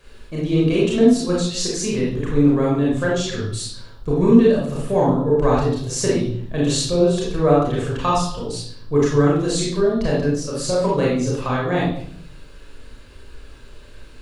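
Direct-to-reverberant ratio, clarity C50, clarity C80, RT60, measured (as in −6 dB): −5.0 dB, 0.5 dB, 5.5 dB, 0.60 s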